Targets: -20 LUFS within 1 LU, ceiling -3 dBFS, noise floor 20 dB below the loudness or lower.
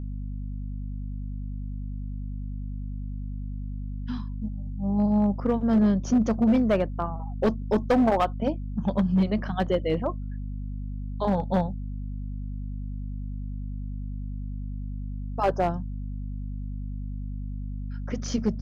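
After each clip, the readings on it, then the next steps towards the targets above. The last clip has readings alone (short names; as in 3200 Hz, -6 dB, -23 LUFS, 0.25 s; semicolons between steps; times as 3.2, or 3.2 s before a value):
clipped 0.8%; flat tops at -16.0 dBFS; hum 50 Hz; harmonics up to 250 Hz; hum level -31 dBFS; loudness -28.5 LUFS; peak -16.0 dBFS; loudness target -20.0 LUFS
-> clip repair -16 dBFS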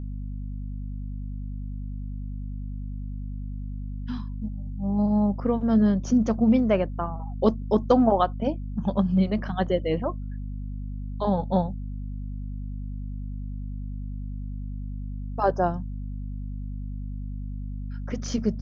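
clipped 0.0%; hum 50 Hz; harmonics up to 250 Hz; hum level -30 dBFS
-> de-hum 50 Hz, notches 5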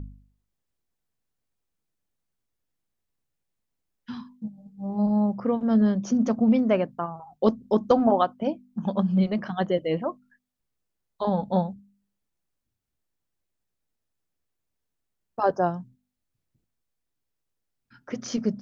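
hum none; loudness -25.0 LUFS; peak -7.0 dBFS; loudness target -20.0 LUFS
-> gain +5 dB; limiter -3 dBFS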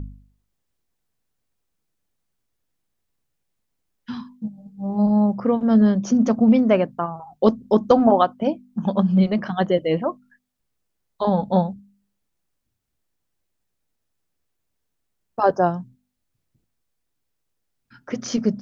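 loudness -20.0 LUFS; peak -3.0 dBFS; noise floor -76 dBFS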